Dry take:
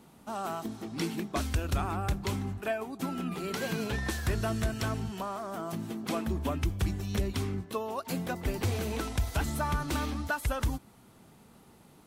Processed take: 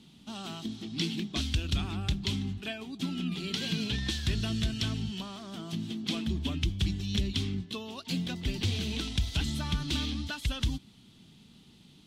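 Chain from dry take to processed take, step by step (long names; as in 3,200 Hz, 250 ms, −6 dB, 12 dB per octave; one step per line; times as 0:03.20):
drawn EQ curve 100 Hz 0 dB, 180 Hz +3 dB, 280 Hz 0 dB, 540 Hz −12 dB, 1,300 Hz −10 dB, 2,300 Hz 0 dB, 3,300 Hz +12 dB, 14,000 Hz −13 dB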